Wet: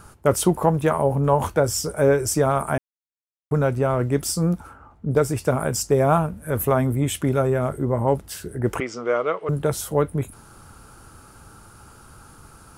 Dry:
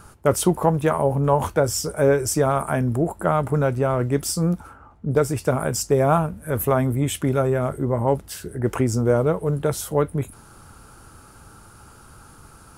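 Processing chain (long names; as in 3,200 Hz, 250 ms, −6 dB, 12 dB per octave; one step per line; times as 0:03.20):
0:02.78–0:03.51: silence
0:08.80–0:09.49: loudspeaker in its box 480–5,500 Hz, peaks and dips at 870 Hz −5 dB, 1,200 Hz +8 dB, 2,100 Hz +9 dB, 3,000 Hz +8 dB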